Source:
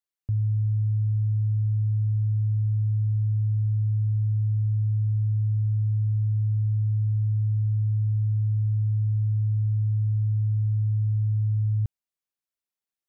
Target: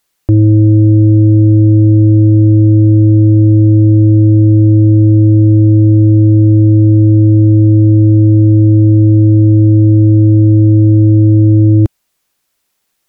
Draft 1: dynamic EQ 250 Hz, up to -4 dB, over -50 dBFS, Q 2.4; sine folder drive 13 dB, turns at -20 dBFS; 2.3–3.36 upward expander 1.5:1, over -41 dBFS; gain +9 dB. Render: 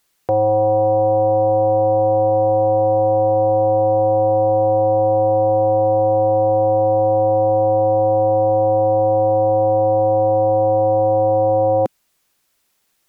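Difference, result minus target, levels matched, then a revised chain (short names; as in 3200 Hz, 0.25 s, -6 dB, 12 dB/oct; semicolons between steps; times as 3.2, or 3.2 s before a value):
sine folder: distortion +18 dB
dynamic EQ 250 Hz, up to -4 dB, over -50 dBFS, Q 2.4; sine folder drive 13 dB, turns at -12 dBFS; 2.3–3.36 upward expander 1.5:1, over -41 dBFS; gain +9 dB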